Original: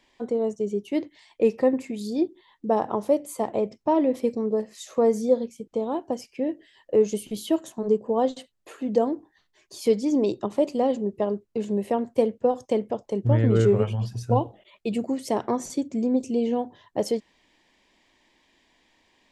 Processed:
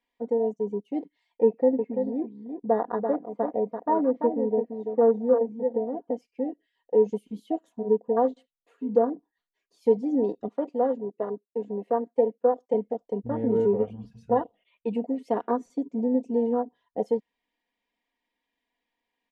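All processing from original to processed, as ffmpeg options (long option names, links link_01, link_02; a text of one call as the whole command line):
ffmpeg -i in.wav -filter_complex "[0:a]asettb=1/sr,asplit=3[link_01][link_02][link_03];[link_01]atrim=end=1.454[link_04];[link_02]atrim=start=1.45:end=6.11,asetpts=PTS-STARTPTS,afade=type=in:duration=0.004:curve=qsin,afade=type=out:start_time=4.656:duration=0.004:curve=qsin,lowpass=2000,aecho=1:1:337:0.473,atrim=end_sample=205506[link_05];[link_03]atrim=start=6.106[link_06];[link_04][link_05]acrossfade=duration=0.004:curve1=hsin:curve2=qsin[link_07];[link_07][link_06]acrossfade=duration=0.004:curve1=qsin:curve2=hsin,asettb=1/sr,asplit=3[link_08][link_09][link_10];[link_08]atrim=end=10.484[link_11];[link_09]atrim=start=10.48:end=12.74,asetpts=PTS-STARTPTS,afade=type=in:duration=0.004:curve=qsin,afade=type=out:start_time=2.256:duration=0.004:curve=qsin,highpass=260,highshelf=frequency=6400:gain=-10[link_12];[link_10]atrim=start=12.736[link_13];[link_11][link_12]acrossfade=duration=0.004:curve1=hsin:curve2=qsin[link_14];[link_14][link_13]acrossfade=duration=0.004:curve1=qsin:curve2=hsin,asettb=1/sr,asplit=3[link_15][link_16][link_17];[link_15]atrim=end=14.114[link_18];[link_16]atrim=start=14.11:end=15.52,asetpts=PTS-STARTPTS,afade=type=in:duration=0.004:curve=qsin,afade=type=out:start_time=1.406:duration=0.004:curve=qsin,equalizer=frequency=2600:width_type=o:width=0.98:gain=9,bandreject=frequency=50:width_type=h:width=6,bandreject=frequency=100:width_type=h:width=6,bandreject=frequency=150:width_type=h:width=6[link_19];[link_17]atrim=start=15.516[link_20];[link_18][link_19]acrossfade=duration=0.004:curve1=hsin:curve2=qsin[link_21];[link_21][link_20]acrossfade=duration=0.004:curve1=qsin:curve2=hsin,afwtdn=0.0562,bass=frequency=250:gain=-6,treble=frequency=4000:gain=-9,aecho=1:1:4.2:0.71,volume=-3dB" out.wav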